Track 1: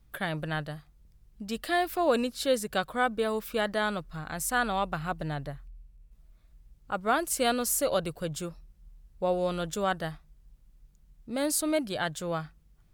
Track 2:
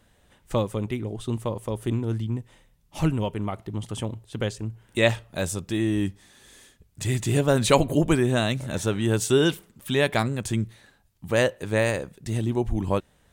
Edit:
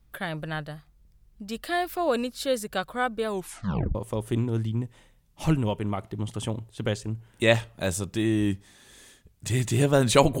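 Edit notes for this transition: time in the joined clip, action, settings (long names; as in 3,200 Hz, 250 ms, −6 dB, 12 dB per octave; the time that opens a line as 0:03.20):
track 1
0:03.28: tape stop 0.67 s
0:03.95: continue with track 2 from 0:01.50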